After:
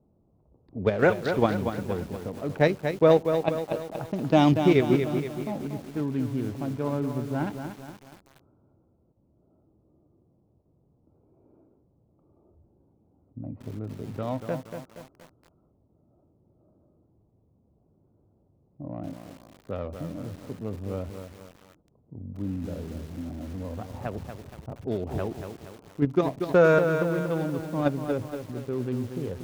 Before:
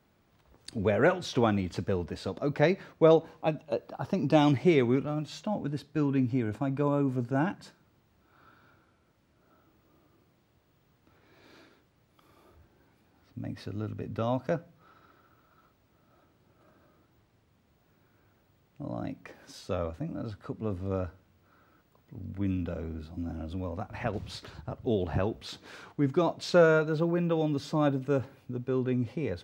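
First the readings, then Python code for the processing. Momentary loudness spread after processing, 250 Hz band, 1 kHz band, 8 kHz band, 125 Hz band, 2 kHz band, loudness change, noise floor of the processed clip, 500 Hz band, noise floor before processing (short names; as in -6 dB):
20 LU, +2.0 dB, +2.0 dB, 0.0 dB, +1.5 dB, +2.5 dB, +2.0 dB, -66 dBFS, +2.5 dB, -68 dBFS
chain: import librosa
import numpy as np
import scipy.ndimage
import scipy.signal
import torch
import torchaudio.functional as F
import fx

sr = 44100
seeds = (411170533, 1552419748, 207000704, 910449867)

p1 = fx.wiener(x, sr, points=25)
p2 = fx.env_lowpass(p1, sr, base_hz=670.0, full_db=-23.0)
p3 = fx.level_steps(p2, sr, step_db=24)
p4 = p2 + (p3 * 10.0 ** (2.0 / 20.0))
p5 = fx.echo_crushed(p4, sr, ms=236, feedback_pct=55, bits=7, wet_db=-7)
y = p5 * 10.0 ** (-2.0 / 20.0)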